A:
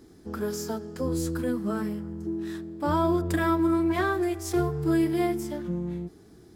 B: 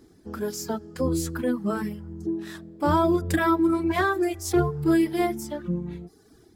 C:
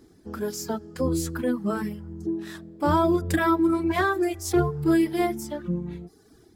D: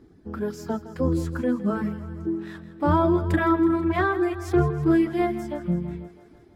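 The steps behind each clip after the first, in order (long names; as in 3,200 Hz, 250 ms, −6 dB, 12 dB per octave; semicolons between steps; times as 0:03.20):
reverb reduction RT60 1.1 s; automatic gain control gain up to 6 dB; level −1.5 dB
no processing that can be heard
bass and treble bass +4 dB, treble −14 dB; feedback echo with a high-pass in the loop 163 ms, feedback 67%, high-pass 260 Hz, level −14 dB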